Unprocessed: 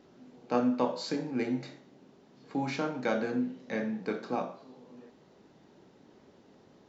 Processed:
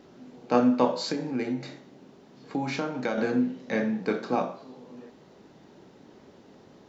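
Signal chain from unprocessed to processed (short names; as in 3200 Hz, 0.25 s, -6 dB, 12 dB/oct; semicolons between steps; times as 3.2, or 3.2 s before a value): 1.07–3.18 compressor 3:1, threshold -33 dBFS, peak gain reduction 7 dB; gain +6 dB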